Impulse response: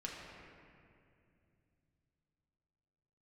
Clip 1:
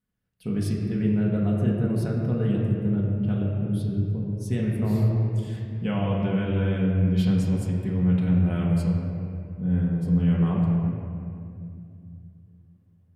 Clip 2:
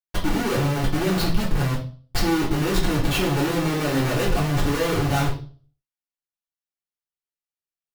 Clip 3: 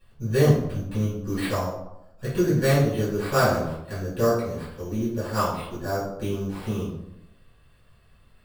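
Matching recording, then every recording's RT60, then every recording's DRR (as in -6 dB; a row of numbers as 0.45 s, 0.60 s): 1; 2.5 s, 0.40 s, 0.85 s; -3.5 dB, -7.0 dB, -11.5 dB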